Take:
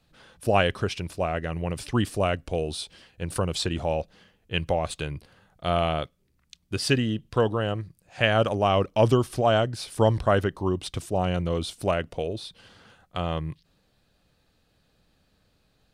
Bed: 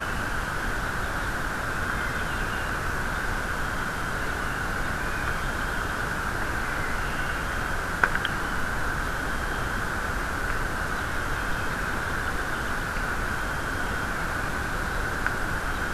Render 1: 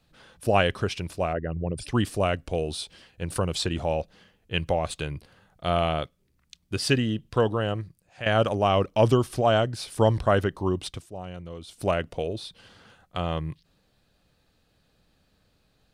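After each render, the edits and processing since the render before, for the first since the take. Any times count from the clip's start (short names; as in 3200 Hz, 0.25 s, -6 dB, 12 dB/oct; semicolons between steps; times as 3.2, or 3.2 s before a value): 1.33–1.87 formant sharpening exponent 2; 7.82–8.26 fade out linear, to -13.5 dB; 10.87–11.83 dip -12.5 dB, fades 0.16 s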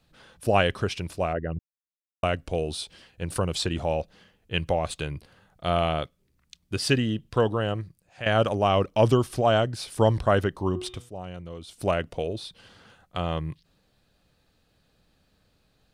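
1.59–2.23 mute; 10.67–11.09 de-hum 121.4 Hz, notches 31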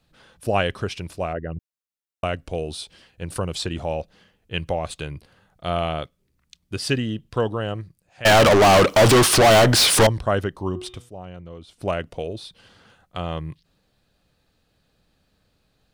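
8.25–10.07 overdrive pedal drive 39 dB, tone 7600 Hz, clips at -7 dBFS; 11.15–11.88 high shelf 5000 Hz -11 dB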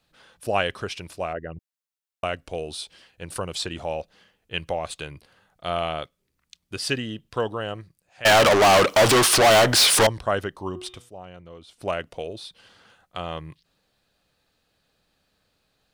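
low shelf 330 Hz -9 dB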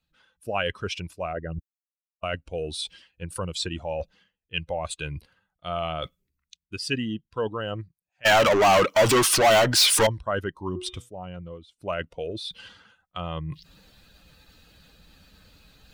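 per-bin expansion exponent 1.5; reverse; upward compressor, threshold -21 dBFS; reverse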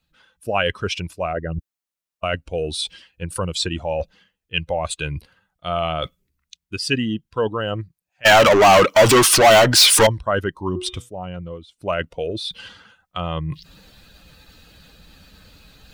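gain +6.5 dB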